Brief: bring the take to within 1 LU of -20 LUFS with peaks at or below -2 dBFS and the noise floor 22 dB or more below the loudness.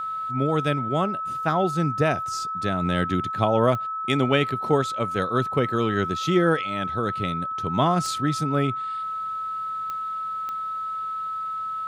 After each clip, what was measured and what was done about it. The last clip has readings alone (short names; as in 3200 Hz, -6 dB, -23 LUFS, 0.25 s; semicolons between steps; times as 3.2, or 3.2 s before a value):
clicks 4; steady tone 1300 Hz; tone level -27 dBFS; loudness -24.5 LUFS; peak -5.0 dBFS; loudness target -20.0 LUFS
-> de-click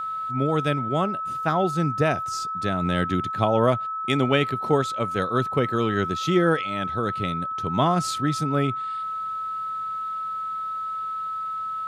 clicks 0; steady tone 1300 Hz; tone level -27 dBFS
-> notch 1300 Hz, Q 30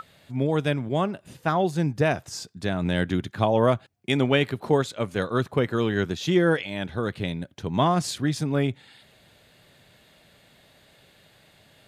steady tone none; loudness -25.5 LUFS; peak -6.0 dBFS; loudness target -20.0 LUFS
-> gain +5.5 dB; limiter -2 dBFS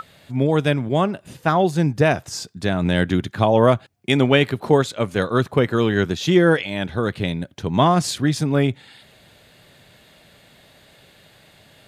loudness -20.0 LUFS; peak -2.0 dBFS; noise floor -52 dBFS